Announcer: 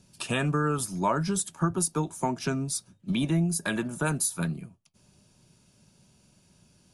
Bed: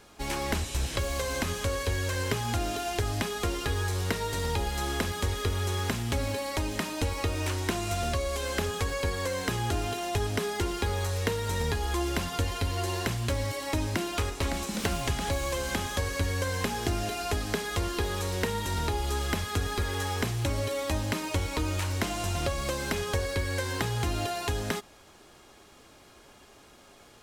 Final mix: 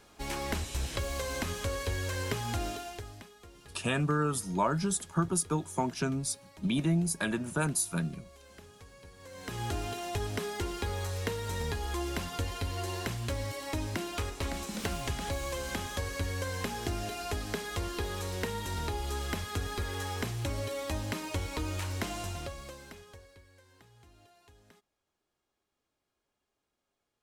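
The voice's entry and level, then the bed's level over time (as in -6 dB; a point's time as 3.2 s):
3.55 s, -2.5 dB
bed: 2.67 s -4 dB
3.36 s -23.5 dB
9.15 s -23.5 dB
9.62 s -5 dB
22.17 s -5 dB
23.53 s -30 dB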